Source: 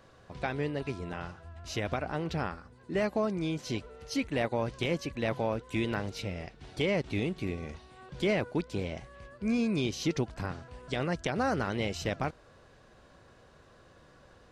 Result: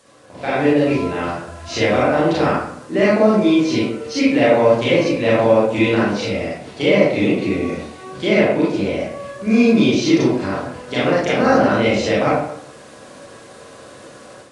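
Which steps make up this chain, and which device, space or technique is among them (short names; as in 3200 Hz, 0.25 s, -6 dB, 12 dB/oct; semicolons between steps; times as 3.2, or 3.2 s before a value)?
filmed off a television (BPF 180–6300 Hz; bell 570 Hz +5.5 dB 0.21 oct; reverb RT60 0.70 s, pre-delay 28 ms, DRR -8 dB; white noise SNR 31 dB; AGC gain up to 9 dB; AAC 96 kbps 22050 Hz)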